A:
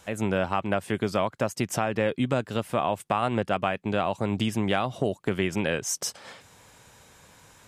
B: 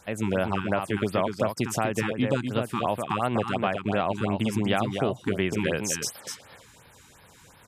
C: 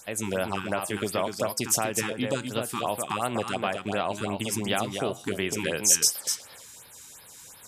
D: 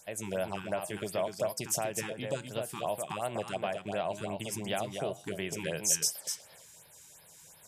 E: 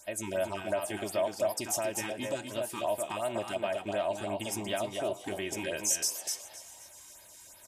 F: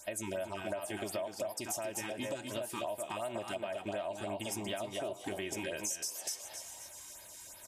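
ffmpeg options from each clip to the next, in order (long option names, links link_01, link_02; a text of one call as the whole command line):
ffmpeg -i in.wav -filter_complex "[0:a]asplit=2[link_01][link_02];[link_02]aecho=0:1:247:0.501[link_03];[link_01][link_03]amix=inputs=2:normalize=0,afftfilt=real='re*(1-between(b*sr/1024,530*pow(7600/530,0.5+0.5*sin(2*PI*2.8*pts/sr))/1.41,530*pow(7600/530,0.5+0.5*sin(2*PI*2.8*pts/sr))*1.41))':imag='im*(1-between(b*sr/1024,530*pow(7600/530,0.5+0.5*sin(2*PI*2.8*pts/sr))/1.41,530*pow(7600/530,0.5+0.5*sin(2*PI*2.8*pts/sr))*1.41))':win_size=1024:overlap=0.75" out.wav
ffmpeg -i in.wav -af "bass=frequency=250:gain=-5,treble=frequency=4000:gain=14,areverse,acompressor=mode=upward:threshold=-43dB:ratio=2.5,areverse,flanger=delay=6.6:depth=4.4:regen=-86:speed=0.69:shape=sinusoidal,volume=2.5dB" out.wav
ffmpeg -i in.wav -af "equalizer=frequency=160:width_type=o:width=0.33:gain=8,equalizer=frequency=250:width_type=o:width=0.33:gain=-7,equalizer=frequency=630:width_type=o:width=0.33:gain=7,equalizer=frequency=1250:width_type=o:width=0.33:gain=-6,equalizer=frequency=4000:width_type=o:width=0.33:gain=-3,volume=-7.5dB" out.wav
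ffmpeg -i in.wav -filter_complex "[0:a]asplit=2[link_01][link_02];[link_02]alimiter=level_in=1.5dB:limit=-24dB:level=0:latency=1,volume=-1.5dB,volume=1.5dB[link_03];[link_01][link_03]amix=inputs=2:normalize=0,aecho=1:1:3.2:0.77,asplit=6[link_04][link_05][link_06][link_07][link_08][link_09];[link_05]adelay=264,afreqshift=93,volume=-16.5dB[link_10];[link_06]adelay=528,afreqshift=186,volume=-21.4dB[link_11];[link_07]adelay=792,afreqshift=279,volume=-26.3dB[link_12];[link_08]adelay=1056,afreqshift=372,volume=-31.1dB[link_13];[link_09]adelay=1320,afreqshift=465,volume=-36dB[link_14];[link_04][link_10][link_11][link_12][link_13][link_14]amix=inputs=6:normalize=0,volume=-6.5dB" out.wav
ffmpeg -i in.wav -af "acompressor=threshold=-37dB:ratio=6,volume=2dB" out.wav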